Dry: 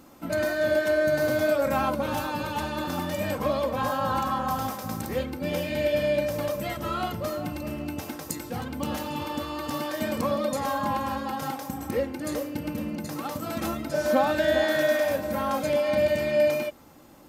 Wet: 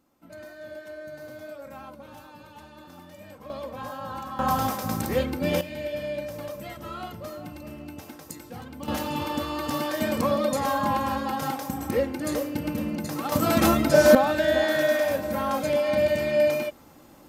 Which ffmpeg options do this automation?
-af "asetnsamples=n=441:p=0,asendcmd='3.5 volume volume -9dB;4.39 volume volume 4dB;5.61 volume volume -7dB;8.88 volume volume 2.5dB;13.32 volume volume 10dB;14.15 volume volume 0.5dB',volume=0.141"

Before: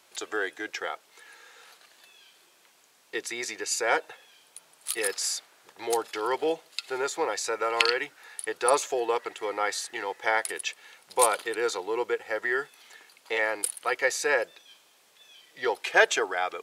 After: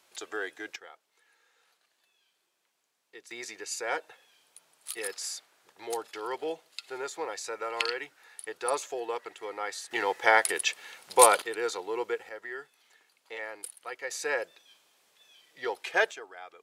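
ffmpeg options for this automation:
-af "asetnsamples=n=441:p=0,asendcmd='0.76 volume volume -16.5dB;3.31 volume volume -7dB;9.91 volume volume 4dB;11.42 volume volume -3.5dB;12.29 volume volume -12dB;14.11 volume volume -5.5dB;16.11 volume volume -17dB',volume=0.562"

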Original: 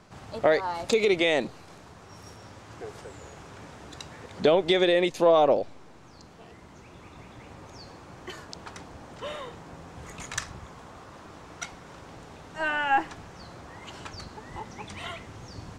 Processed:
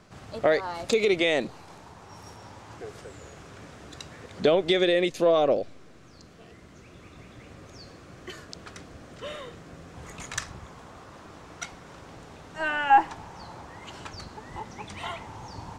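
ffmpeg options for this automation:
-af "asetnsamples=n=441:p=0,asendcmd='1.49 equalizer g 6;2.77 equalizer g -5.5;4.7 equalizer g -11.5;9.94 equalizer g -1.5;12.9 equalizer g 9.5;13.65 equalizer g 1.5;15.03 equalizer g 13',equalizer=f=890:t=o:w=0.38:g=-4.5"

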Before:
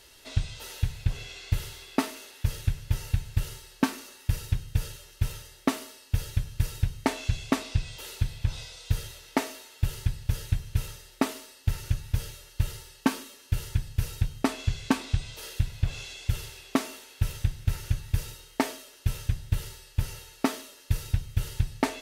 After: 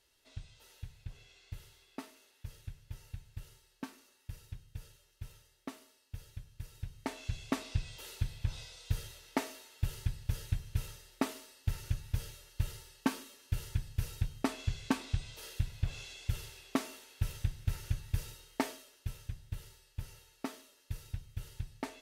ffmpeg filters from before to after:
-af "volume=0.447,afade=t=in:st=6.69:d=1.04:silence=0.266073,afade=t=out:st=18.63:d=0.54:silence=0.446684"

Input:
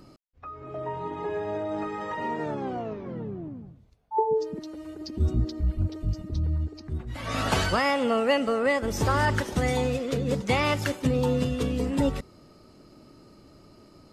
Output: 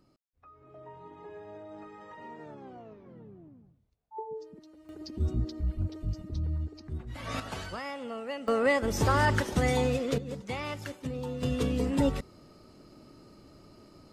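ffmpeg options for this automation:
-af "asetnsamples=n=441:p=0,asendcmd='4.89 volume volume -5dB;7.4 volume volume -14dB;8.48 volume volume -1dB;10.18 volume volume -11.5dB;11.43 volume volume -1.5dB',volume=0.178"

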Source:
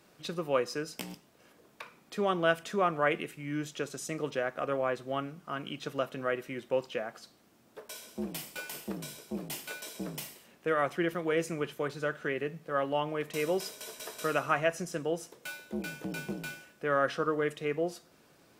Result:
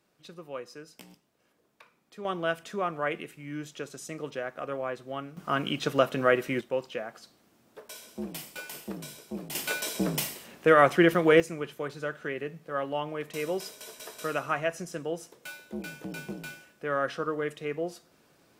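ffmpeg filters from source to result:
-af "asetnsamples=n=441:p=0,asendcmd='2.25 volume volume -2.5dB;5.37 volume volume 9dB;6.61 volume volume 0dB;9.55 volume volume 10dB;11.4 volume volume -1dB',volume=0.316"

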